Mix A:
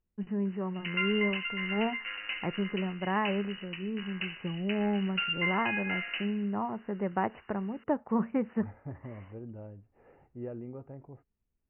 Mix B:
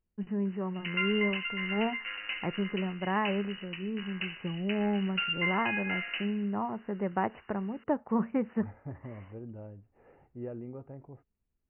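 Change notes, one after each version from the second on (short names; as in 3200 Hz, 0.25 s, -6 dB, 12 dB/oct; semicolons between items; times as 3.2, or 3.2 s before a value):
none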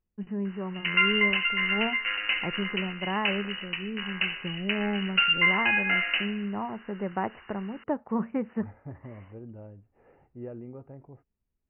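background +9.0 dB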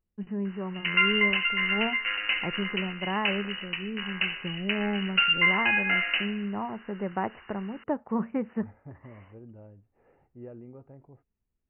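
second voice -4.0 dB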